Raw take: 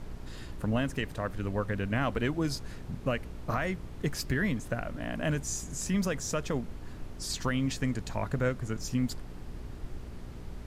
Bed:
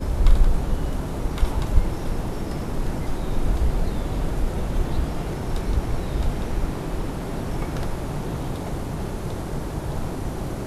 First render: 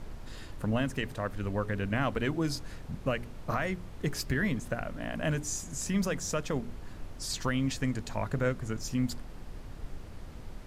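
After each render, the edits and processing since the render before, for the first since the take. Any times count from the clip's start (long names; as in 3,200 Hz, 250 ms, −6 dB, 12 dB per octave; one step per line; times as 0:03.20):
hum removal 60 Hz, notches 7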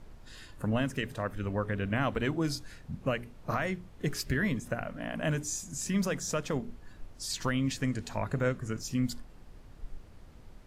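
noise reduction from a noise print 8 dB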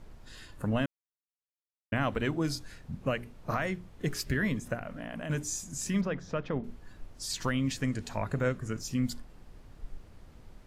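0:00.86–0:01.92: silence
0:04.75–0:05.30: downward compressor, threshold −34 dBFS
0:06.01–0:06.64: high-frequency loss of the air 300 metres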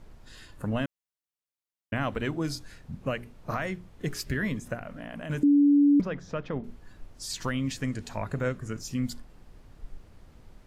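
0:05.43–0:06.00: beep over 287 Hz −16 dBFS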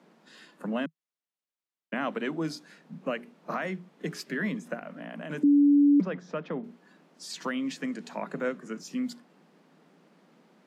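Butterworth high-pass 160 Hz 96 dB per octave
high-shelf EQ 6,700 Hz −11 dB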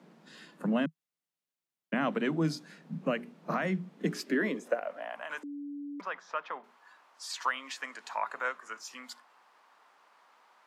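high-pass filter sweep 130 Hz → 1,000 Hz, 0:03.71–0:05.30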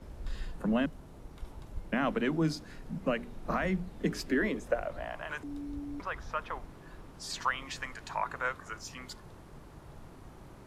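mix in bed −22.5 dB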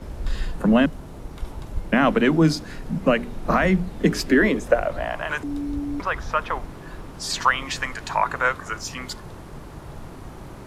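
level +12 dB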